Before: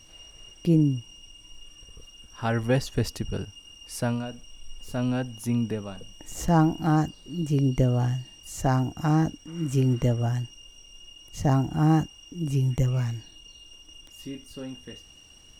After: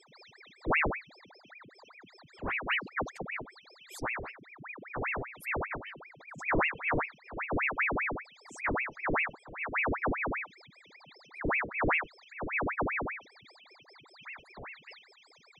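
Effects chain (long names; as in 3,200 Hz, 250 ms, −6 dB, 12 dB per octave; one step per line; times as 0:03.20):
expanding power law on the bin magnitudes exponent 3.2
ring modulator whose carrier an LFO sweeps 1,300 Hz, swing 90%, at 5.1 Hz
level −5 dB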